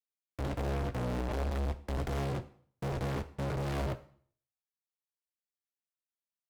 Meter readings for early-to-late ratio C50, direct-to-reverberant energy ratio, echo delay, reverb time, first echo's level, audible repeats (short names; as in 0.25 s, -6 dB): 15.5 dB, 10.5 dB, none, 0.55 s, none, none